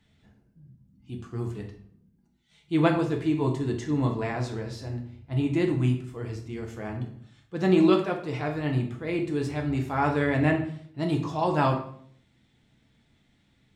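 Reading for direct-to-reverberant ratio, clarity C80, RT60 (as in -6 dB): 1.5 dB, 12.5 dB, 0.60 s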